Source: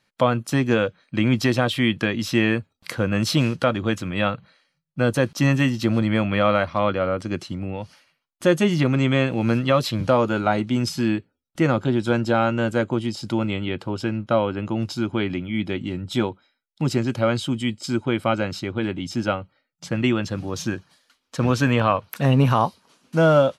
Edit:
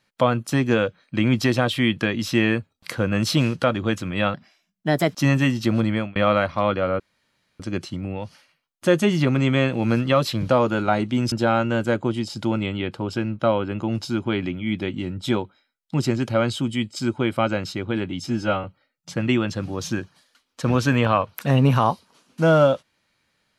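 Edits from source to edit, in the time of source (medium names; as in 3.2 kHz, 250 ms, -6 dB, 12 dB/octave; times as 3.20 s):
4.34–5.32 s: speed 123%
5.98–6.34 s: fade out equal-power
7.18 s: insert room tone 0.60 s
10.90–12.19 s: delete
19.14–19.39 s: stretch 1.5×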